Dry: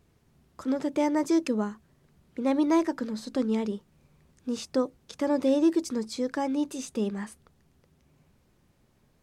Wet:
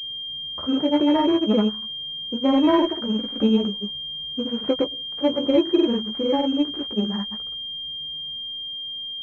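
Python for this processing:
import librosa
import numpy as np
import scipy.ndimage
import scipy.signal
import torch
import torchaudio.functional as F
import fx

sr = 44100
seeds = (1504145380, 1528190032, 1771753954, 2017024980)

y = fx.dead_time(x, sr, dead_ms=0.08)
y = fx.granulator(y, sr, seeds[0], grain_ms=100.0, per_s=20.0, spray_ms=100.0, spread_st=0)
y = fx.doubler(y, sr, ms=14.0, db=-4.5)
y = fx.pwm(y, sr, carrier_hz=3200.0)
y = y * librosa.db_to_amplitude(6.5)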